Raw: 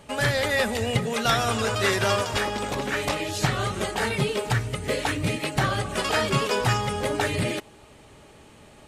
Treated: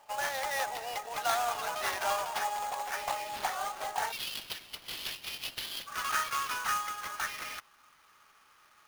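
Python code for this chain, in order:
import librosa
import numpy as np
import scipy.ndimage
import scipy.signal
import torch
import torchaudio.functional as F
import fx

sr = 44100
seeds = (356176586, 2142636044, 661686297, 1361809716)

y = fx.ladder_highpass(x, sr, hz=fx.steps((0.0, 700.0), (4.11, 2800.0), (5.86, 1100.0)), resonance_pct=60)
y = fx.sample_hold(y, sr, seeds[0], rate_hz=7800.0, jitter_pct=20)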